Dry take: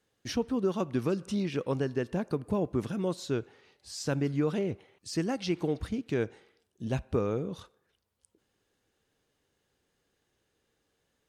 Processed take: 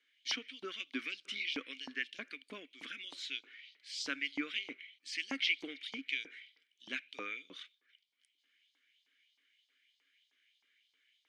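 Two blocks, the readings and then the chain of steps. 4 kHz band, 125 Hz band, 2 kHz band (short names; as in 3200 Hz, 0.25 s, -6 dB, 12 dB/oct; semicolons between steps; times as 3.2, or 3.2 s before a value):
+5.5 dB, under -35 dB, +6.0 dB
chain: vowel filter i; LFO high-pass saw up 3.2 Hz 890–5000 Hz; gain +17 dB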